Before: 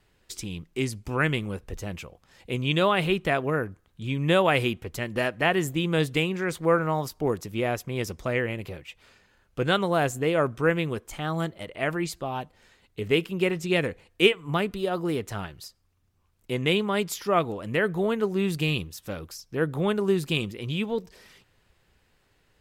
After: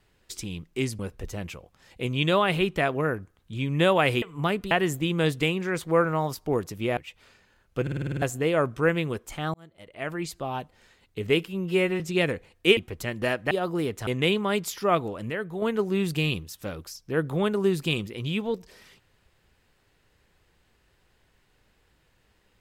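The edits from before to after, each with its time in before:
0.99–1.48 cut
4.71–5.45 swap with 14.32–14.81
7.71–8.78 cut
9.63 stutter in place 0.05 s, 8 plays
11.35–12.3 fade in
13.29–13.55 stretch 2×
15.37–16.51 cut
17.74–18.06 gain -7 dB

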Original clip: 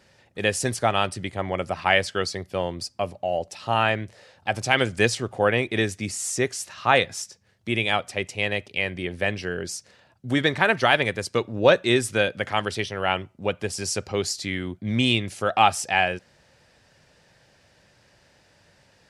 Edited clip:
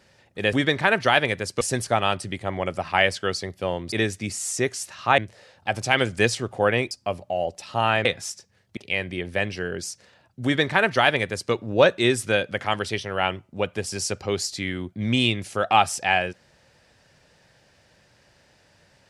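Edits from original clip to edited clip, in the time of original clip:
2.84–3.98 swap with 5.71–6.97
7.69–8.63 cut
10.3–11.38 copy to 0.53

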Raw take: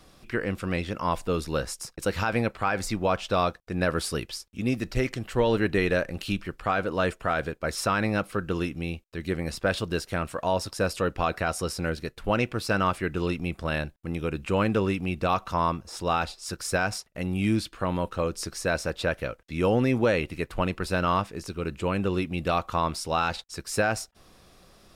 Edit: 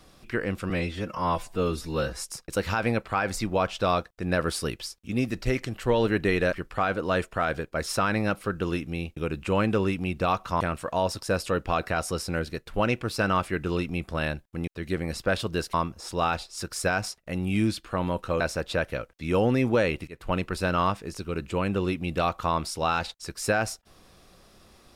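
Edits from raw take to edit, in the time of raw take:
0.7–1.71 stretch 1.5×
6.02–6.41 cut
9.05–10.11 swap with 14.18–15.62
18.29–18.7 cut
20.37–20.64 fade in, from -22 dB

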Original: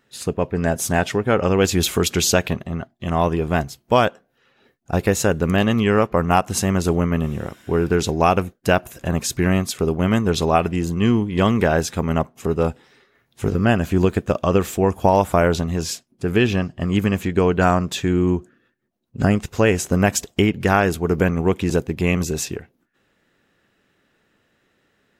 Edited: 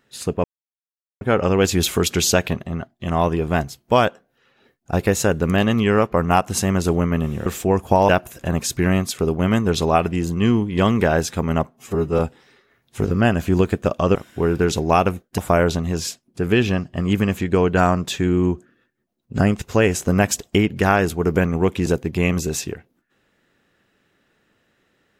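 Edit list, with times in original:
0.44–1.21 mute
7.46–8.69 swap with 14.59–15.22
12.31–12.63 stretch 1.5×

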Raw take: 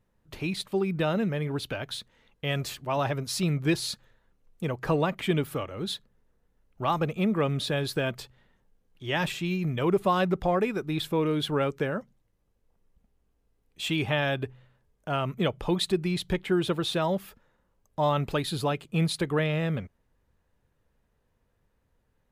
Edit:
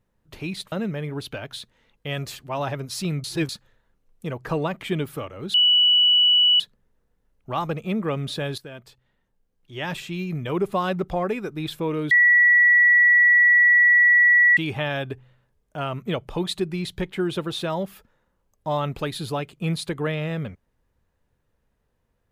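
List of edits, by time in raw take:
0.72–1.1 cut
3.62–3.87 reverse
5.92 add tone 2950 Hz -13.5 dBFS 1.06 s
7.9–9.63 fade in, from -13.5 dB
11.43–13.89 bleep 1940 Hz -12 dBFS

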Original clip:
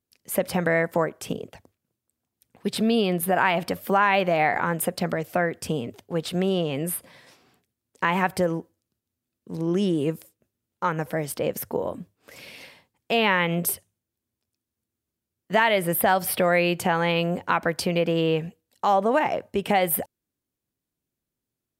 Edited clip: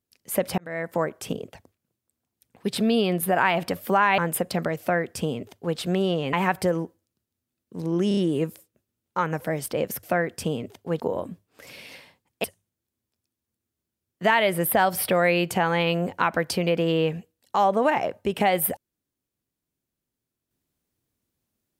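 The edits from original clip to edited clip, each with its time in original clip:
0.58–1.1 fade in
4.18–4.65 cut
5.27–6.24 copy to 11.69
6.8–8.08 cut
9.83 stutter 0.03 s, 4 plays
13.13–13.73 cut

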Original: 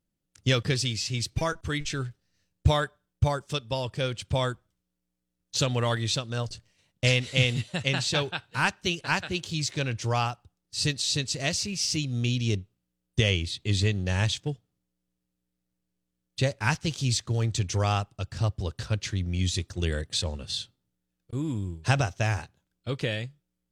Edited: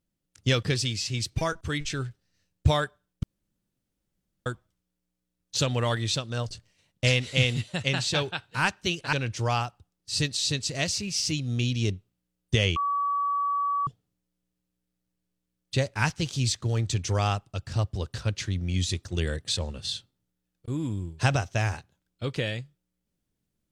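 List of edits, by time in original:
3.23–4.46 room tone
9.13–9.78 cut
13.41–14.52 bleep 1140 Hz -23.5 dBFS

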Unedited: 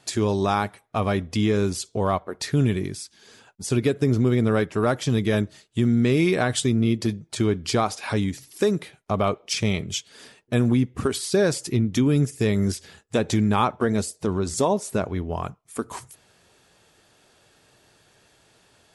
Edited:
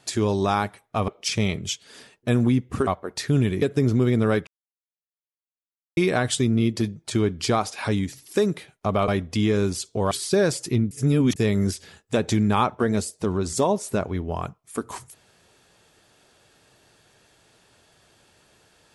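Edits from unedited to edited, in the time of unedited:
1.08–2.11 swap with 9.33–11.12
2.86–3.87 cut
4.72–6.22 mute
11.92–12.37 reverse

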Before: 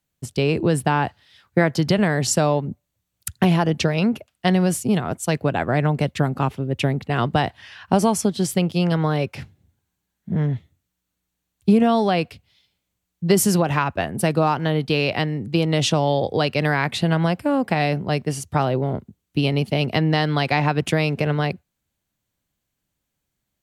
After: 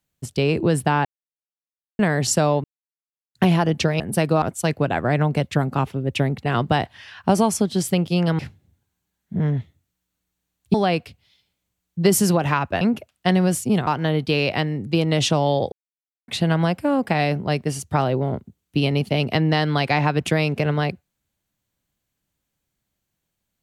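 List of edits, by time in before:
1.05–1.99 mute
2.64–3.35 mute
4–5.06 swap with 14.06–14.48
9.03–9.35 cut
11.7–11.99 cut
16.33–16.89 mute

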